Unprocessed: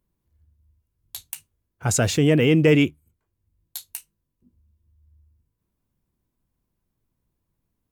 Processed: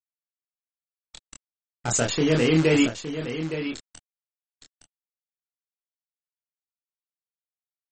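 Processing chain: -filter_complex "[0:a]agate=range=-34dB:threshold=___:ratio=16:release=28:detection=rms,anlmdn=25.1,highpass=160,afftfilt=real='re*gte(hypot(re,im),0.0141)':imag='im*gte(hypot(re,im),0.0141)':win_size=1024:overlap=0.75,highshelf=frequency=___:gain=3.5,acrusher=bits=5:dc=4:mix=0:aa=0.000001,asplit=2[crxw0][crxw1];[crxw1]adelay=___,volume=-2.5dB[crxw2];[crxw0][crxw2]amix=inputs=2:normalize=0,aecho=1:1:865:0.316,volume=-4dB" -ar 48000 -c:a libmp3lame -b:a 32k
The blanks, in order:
-47dB, 7000, 25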